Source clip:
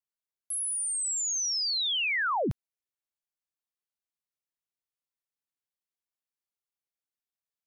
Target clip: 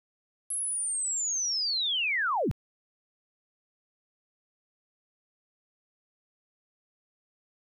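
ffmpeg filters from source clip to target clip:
ffmpeg -i in.wav -af "aeval=exprs='val(0)*gte(abs(val(0)),0.00188)':channel_layout=same" out.wav

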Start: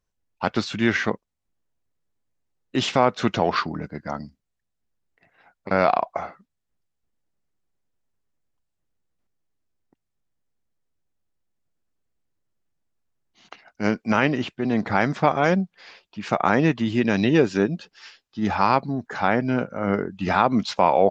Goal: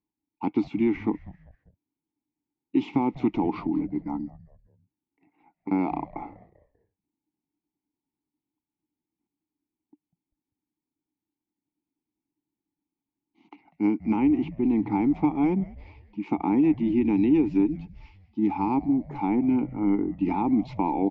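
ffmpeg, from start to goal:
ffmpeg -i in.wav -filter_complex "[0:a]asplit=3[link_01][link_02][link_03];[link_01]bandpass=frequency=300:width_type=q:width=8,volume=0dB[link_04];[link_02]bandpass=frequency=870:width_type=q:width=8,volume=-6dB[link_05];[link_03]bandpass=frequency=2240:width_type=q:width=8,volume=-9dB[link_06];[link_04][link_05][link_06]amix=inputs=3:normalize=0,tiltshelf=frequency=750:gain=6,acrossover=split=710|1500[link_07][link_08][link_09];[link_07]acompressor=threshold=-28dB:ratio=4[link_10];[link_08]acompressor=threshold=-46dB:ratio=4[link_11];[link_09]acompressor=threshold=-51dB:ratio=4[link_12];[link_10][link_11][link_12]amix=inputs=3:normalize=0,asplit=2[link_13][link_14];[link_14]asplit=3[link_15][link_16][link_17];[link_15]adelay=196,afreqshift=-130,volume=-19dB[link_18];[link_16]adelay=392,afreqshift=-260,volume=-26.1dB[link_19];[link_17]adelay=588,afreqshift=-390,volume=-33.3dB[link_20];[link_18][link_19][link_20]amix=inputs=3:normalize=0[link_21];[link_13][link_21]amix=inputs=2:normalize=0,volume=8.5dB" out.wav

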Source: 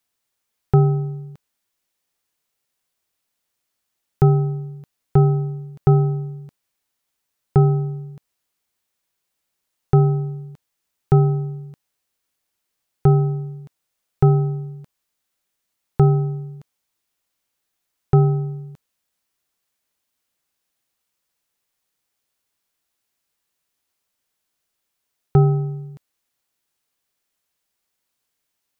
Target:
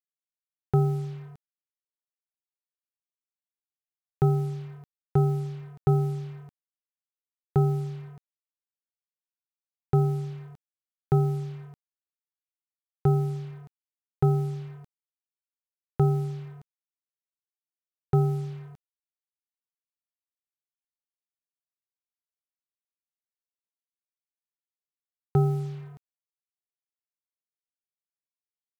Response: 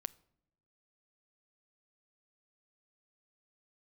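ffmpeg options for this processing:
-af "highpass=frequency=70:poles=1,acrusher=bits=6:mix=0:aa=0.5,volume=-7dB"

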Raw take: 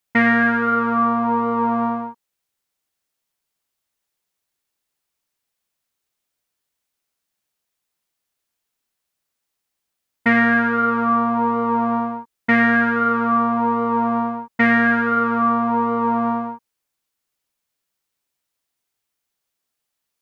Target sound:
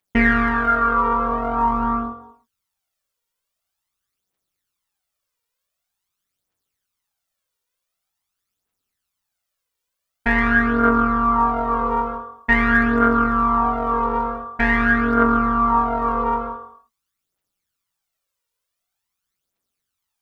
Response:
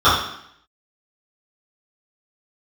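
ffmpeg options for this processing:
-filter_complex "[0:a]tremolo=f=190:d=0.75,aphaser=in_gain=1:out_gain=1:delay=2.2:decay=0.62:speed=0.46:type=triangular,asplit=2[link_01][link_02];[1:a]atrim=start_sample=2205,afade=type=out:start_time=0.26:duration=0.01,atrim=end_sample=11907,adelay=113[link_03];[link_02][link_03]afir=irnorm=-1:irlink=0,volume=-35dB[link_04];[link_01][link_04]amix=inputs=2:normalize=0"

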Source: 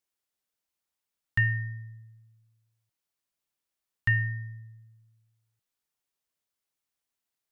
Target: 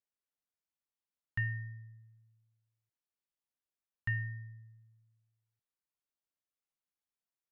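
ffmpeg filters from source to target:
ffmpeg -i in.wav -af "highshelf=frequency=2900:gain=-7.5,volume=-8.5dB" out.wav

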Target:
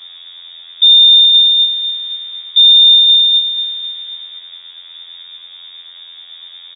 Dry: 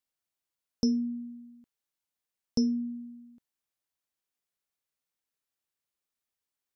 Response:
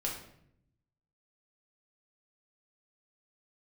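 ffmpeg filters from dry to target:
-filter_complex "[0:a]aeval=exprs='val(0)+0.5*0.0158*sgn(val(0))':channel_layout=same,anlmdn=0.0251,asplit=2[link_01][link_02];[link_02]aecho=0:1:251|502|753|1004|1255|1506:0.251|0.141|0.0788|0.0441|0.0247|0.0138[link_03];[link_01][link_03]amix=inputs=2:normalize=0,acrossover=split=2600[link_04][link_05];[link_05]acompressor=threshold=-56dB:ratio=4:attack=1:release=60[link_06];[link_04][link_06]amix=inputs=2:normalize=0,afftfilt=real='hypot(re,im)*cos(PI*b)':imag='0':win_size=2048:overlap=0.75,acontrast=77,afreqshift=-340,firequalizer=gain_entry='entry(160,0);entry(230,-2);entry(830,-24);entry(1700,-20)':delay=0.05:min_phase=1,lowpass=frequency=3100:width_type=q:width=0.5098,lowpass=frequency=3100:width_type=q:width=0.6013,lowpass=frequency=3100:width_type=q:width=0.9,lowpass=frequency=3100:width_type=q:width=2.563,afreqshift=-3700,alimiter=level_in=22dB:limit=-1dB:release=50:level=0:latency=1,volume=-1dB"

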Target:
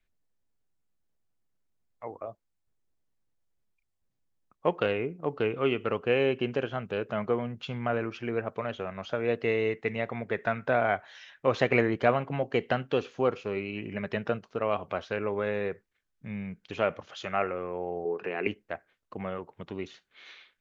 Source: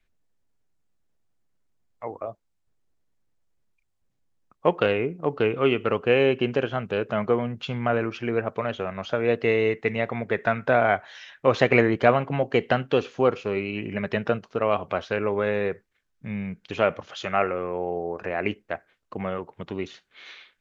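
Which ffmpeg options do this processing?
ffmpeg -i in.wav -filter_complex "[0:a]asettb=1/sr,asplit=3[link_01][link_02][link_03];[link_01]atrim=end=18.054[link_04];[link_02]atrim=start=18.05:end=18.47,asetpts=PTS-STARTPTS,afade=type=in:duration=0.004:curve=qsin,afade=type=out:start_time=0.416:duration=0.004:curve=qsin,highpass=frequency=130:width=0.5412,highpass=frequency=130:width=1.3066,equalizer=frequency=410:width_type=q:width=4:gain=10,equalizer=frequency=600:width_type=q:width=4:gain=-8,equalizer=frequency=2800:width_type=q:width=4:gain=9,lowpass=frequency=5300:width=0.5412,lowpass=frequency=5300:width=1.3066[link_05];[link_03]atrim=start=18.466[link_06];[link_04][link_05]acrossfade=duration=0.004:curve1=hsin:curve2=qsin[link_07];[link_07][link_06]acrossfade=duration=0.004:curve1=qsin:curve2=hsin,volume=-5.5dB" out.wav

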